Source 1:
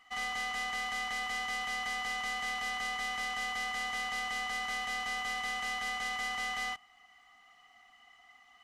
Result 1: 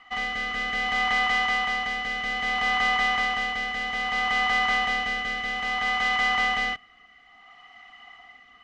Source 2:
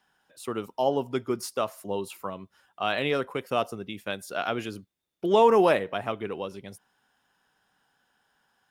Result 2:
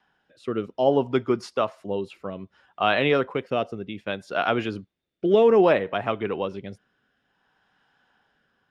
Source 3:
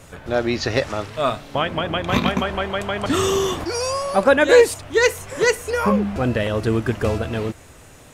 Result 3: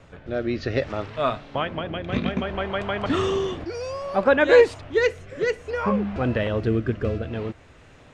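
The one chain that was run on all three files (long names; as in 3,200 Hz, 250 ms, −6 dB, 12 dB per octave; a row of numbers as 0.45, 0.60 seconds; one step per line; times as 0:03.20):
rotating-speaker cabinet horn 0.6 Hz
low-pass filter 3,500 Hz 12 dB per octave
loudness normalisation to −24 LKFS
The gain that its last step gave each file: +13.5, +6.5, −2.0 decibels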